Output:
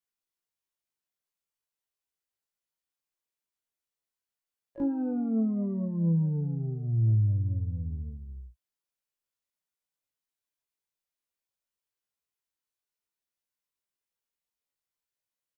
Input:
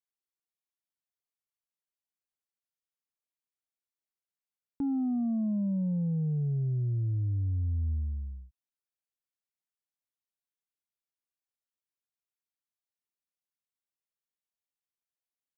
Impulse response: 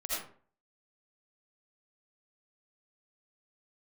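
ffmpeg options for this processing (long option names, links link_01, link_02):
-filter_complex "[0:a]asplit=3[link_01][link_02][link_03];[link_02]asetrate=52444,aresample=44100,atempo=0.840896,volume=-13dB[link_04];[link_03]asetrate=88200,aresample=44100,atempo=0.5,volume=-17dB[link_05];[link_01][link_04][link_05]amix=inputs=3:normalize=0,asplit=2[link_06][link_07];[link_07]adelay=18,volume=-5dB[link_08];[link_06][link_08]amix=inputs=2:normalize=0,aecho=1:1:20|36:0.335|0.335"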